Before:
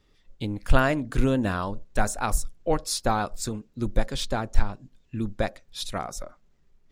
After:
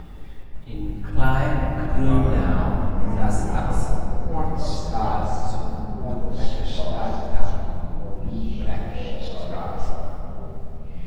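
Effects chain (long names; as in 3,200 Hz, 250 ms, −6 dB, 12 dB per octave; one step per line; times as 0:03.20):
sub-octave generator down 2 octaves, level −1 dB
upward compression, threshold −22 dBFS
parametric band 800 Hz +8 dB 0.34 octaves
time stretch by phase vocoder 1.6×
low-pass that shuts in the quiet parts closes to 2,000 Hz, open at −17.5 dBFS
bit reduction 10 bits
volume swells 134 ms
low-shelf EQ 200 Hz +8 dB
rectangular room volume 160 cubic metres, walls hard, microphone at 0.56 metres
delay with pitch and tempo change per echo 558 ms, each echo −4 semitones, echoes 3, each echo −6 dB
level −5 dB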